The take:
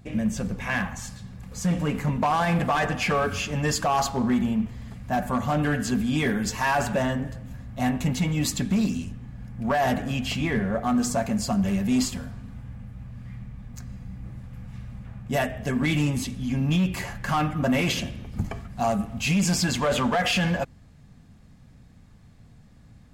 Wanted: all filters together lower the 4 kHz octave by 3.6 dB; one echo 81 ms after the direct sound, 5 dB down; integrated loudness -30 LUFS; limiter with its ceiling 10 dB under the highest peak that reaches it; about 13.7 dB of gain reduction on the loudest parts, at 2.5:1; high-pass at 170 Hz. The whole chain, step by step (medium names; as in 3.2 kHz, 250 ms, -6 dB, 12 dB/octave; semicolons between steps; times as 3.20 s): high-pass 170 Hz; peaking EQ 4 kHz -5 dB; compression 2.5:1, threshold -42 dBFS; peak limiter -35 dBFS; delay 81 ms -5 dB; trim +12.5 dB